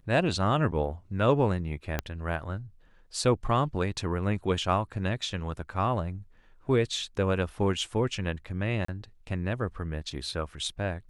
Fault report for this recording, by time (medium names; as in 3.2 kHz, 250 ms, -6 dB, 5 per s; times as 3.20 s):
1.99 s: pop -13 dBFS
8.85–8.88 s: dropout 34 ms